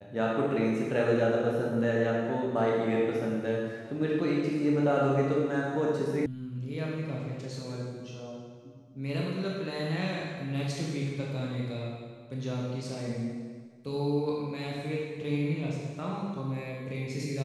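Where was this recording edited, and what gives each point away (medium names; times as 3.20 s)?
6.26 s: sound stops dead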